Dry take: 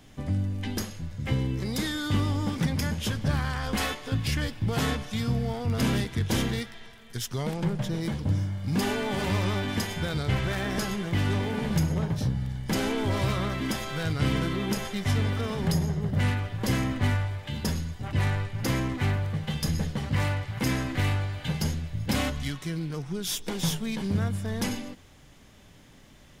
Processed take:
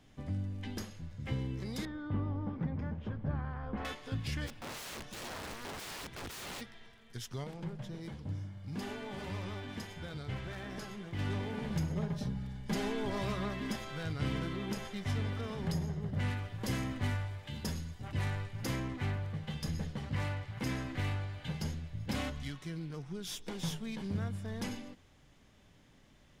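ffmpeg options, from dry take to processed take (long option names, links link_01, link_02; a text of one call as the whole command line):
ffmpeg -i in.wav -filter_complex "[0:a]asettb=1/sr,asplit=3[link_01][link_02][link_03];[link_01]atrim=end=1.854[link_04];[link_02]atrim=start=1.85:end=3.85,asetpts=PTS-STARTPTS,afade=type=in:duration=0.004:curve=qsin,afade=type=out:start_time=1.996:duration=0.004:curve=qsin,lowpass=1200[link_05];[link_03]atrim=start=3.846[link_06];[link_04][link_05]acrossfade=duration=0.004:curve1=hsin:curve2=qsin[link_07];[link_07][link_06]acrossfade=duration=0.004:curve1=qsin:curve2=hsin,asplit=3[link_08][link_09][link_10];[link_08]afade=type=out:start_time=4.46:duration=0.02[link_11];[link_09]aeval=exprs='(mod(26.6*val(0)+1,2)-1)/26.6':channel_layout=same,afade=type=in:start_time=4.46:duration=0.02,afade=type=out:start_time=6.6:duration=0.02[link_12];[link_10]afade=type=in:start_time=6.6:duration=0.02[link_13];[link_11][link_12][link_13]amix=inputs=3:normalize=0,asettb=1/sr,asplit=3[link_14][link_15][link_16];[link_14]atrim=end=7.444[link_17];[link_15]atrim=start=7.44:end=11.19,asetpts=PTS-STARTPTS,afade=type=in:duration=0.004:curve=qsin,afade=type=out:start_time=3.746:duration=0.004:curve=qsin,flanger=delay=2.1:depth=5.7:regen=-76:speed=1.6:shape=sinusoidal[link_18];[link_16]atrim=start=11.186[link_19];[link_17][link_18]acrossfade=duration=0.004:curve1=hsin:curve2=qsin[link_20];[link_20][link_19]acrossfade=duration=0.004:curve1=qsin:curve2=hsin,asettb=1/sr,asplit=3[link_21][link_22][link_23];[link_21]atrim=end=11.954[link_24];[link_22]atrim=start=11.95:end=13.76,asetpts=PTS-STARTPTS,afade=type=in:duration=0.004:curve=qsin,afade=type=out:start_time=1.806:duration=0.004:curve=qsin,aecho=1:1:4.9:0.65,atrim=end_sample=79821[link_25];[link_23]atrim=start=13.756[link_26];[link_24][link_25]acrossfade=duration=0.004:curve1=hsin:curve2=qsin[link_27];[link_27][link_26]acrossfade=duration=0.004:curve1=qsin:curve2=hsin,asettb=1/sr,asplit=3[link_28][link_29][link_30];[link_28]atrim=end=16.304[link_31];[link_29]atrim=start=16.3:end=18.76,asetpts=PTS-STARTPTS,afade=type=in:duration=0.004:curve=qsin,afade=type=out:start_time=2.456:duration=0.004:curve=qsin,highshelf=frequency=5700:gain=7[link_32];[link_30]atrim=start=18.756[link_33];[link_31][link_32]acrossfade=duration=0.004:curve1=hsin:curve2=qsin[link_34];[link_34][link_33]acrossfade=duration=0.004:curve1=qsin:curve2=hsin,highshelf=frequency=8900:gain=-8.5,volume=-9dB" out.wav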